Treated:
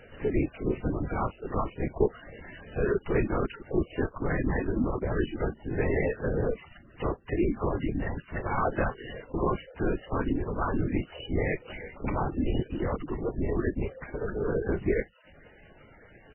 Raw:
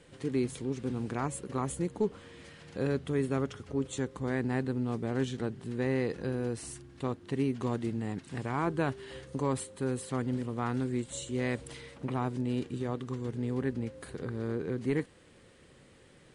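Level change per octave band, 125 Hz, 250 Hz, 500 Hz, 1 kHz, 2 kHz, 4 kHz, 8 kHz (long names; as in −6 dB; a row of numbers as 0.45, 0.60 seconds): +2.0 dB, +1.5 dB, +4.5 dB, +5.0 dB, +5.5 dB, −1.0 dB, below −35 dB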